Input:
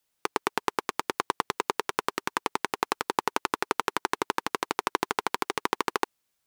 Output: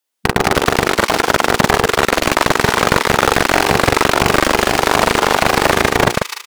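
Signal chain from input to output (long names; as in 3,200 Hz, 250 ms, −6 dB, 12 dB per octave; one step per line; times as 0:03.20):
delay that plays each chunk backwards 111 ms, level −11.5 dB
mains-hum notches 60/120/180/240/300/360/420/480 Hz
leveller curve on the samples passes 5
linear-phase brick-wall high-pass 200 Hz
double-tracking delay 42 ms −3.5 dB
delay with a high-pass on its return 149 ms, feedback 54%, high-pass 2,600 Hz, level −4.5 dB
boost into a limiter +10.5 dB
highs frequency-modulated by the lows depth 0.9 ms
level −1 dB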